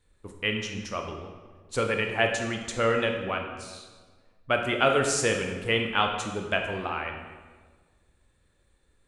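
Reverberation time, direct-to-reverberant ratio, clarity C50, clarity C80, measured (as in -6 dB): 1.5 s, 3.0 dB, 5.0 dB, 7.0 dB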